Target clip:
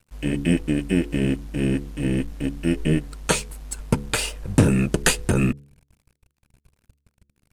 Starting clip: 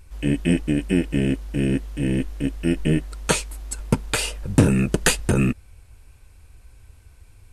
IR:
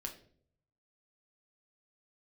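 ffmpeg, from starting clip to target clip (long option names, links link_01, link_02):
-af "aeval=exprs='sgn(val(0))*max(abs(val(0))-0.00708,0)':channel_layout=same,bandreject=frequency=70.54:width_type=h:width=4,bandreject=frequency=141.08:width_type=h:width=4,bandreject=frequency=211.62:width_type=h:width=4,bandreject=frequency=282.16:width_type=h:width=4,bandreject=frequency=352.7:width_type=h:width=4,bandreject=frequency=423.24:width_type=h:width=4,bandreject=frequency=493.78:width_type=h:width=4"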